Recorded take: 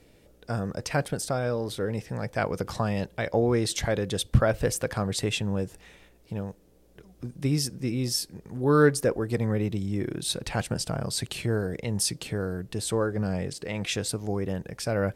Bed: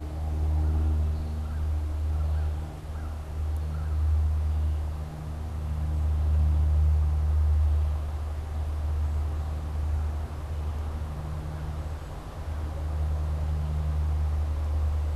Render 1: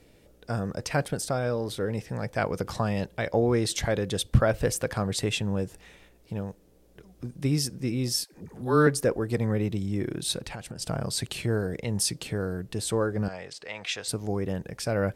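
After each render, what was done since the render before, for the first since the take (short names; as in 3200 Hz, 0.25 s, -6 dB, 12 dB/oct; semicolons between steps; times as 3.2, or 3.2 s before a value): 8.24–8.87 dispersion lows, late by 90 ms, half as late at 520 Hz; 10.41–10.82 compressor 16:1, threshold -33 dBFS; 13.28–14.08 three-band isolator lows -17 dB, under 570 Hz, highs -14 dB, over 6900 Hz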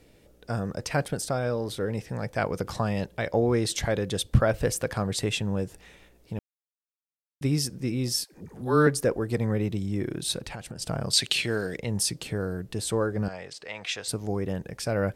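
6.39–7.41 mute; 11.13–11.77 weighting filter D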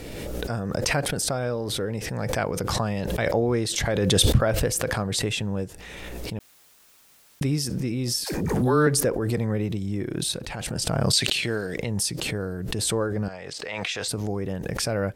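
backwards sustainer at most 22 dB/s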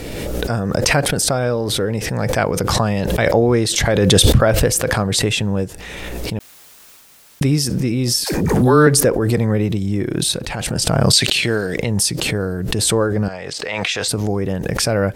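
reverse; upward compressor, threshold -46 dBFS; reverse; maximiser +8.5 dB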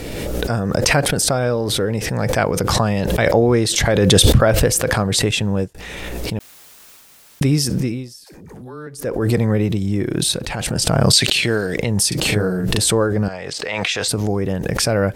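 5.31–5.75 expander -21 dBFS; 7.8–9.27 dip -22.5 dB, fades 0.29 s; 12.08–12.79 doubler 38 ms -2 dB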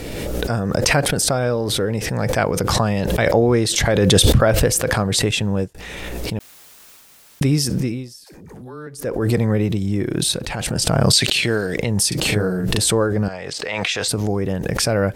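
gain -1 dB; limiter -3 dBFS, peak gain reduction 1 dB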